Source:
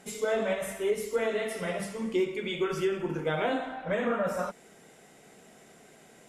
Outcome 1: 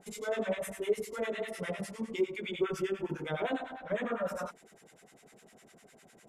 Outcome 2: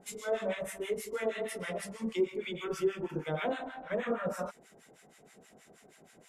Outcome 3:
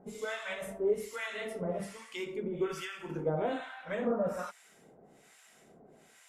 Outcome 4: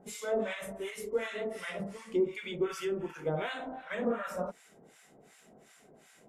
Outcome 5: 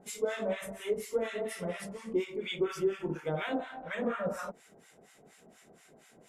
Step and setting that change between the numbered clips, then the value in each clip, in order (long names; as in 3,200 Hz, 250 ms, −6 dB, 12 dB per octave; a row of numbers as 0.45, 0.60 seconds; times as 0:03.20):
two-band tremolo in antiphase, speed: 9.9, 6.3, 1.2, 2.7, 4.2 Hertz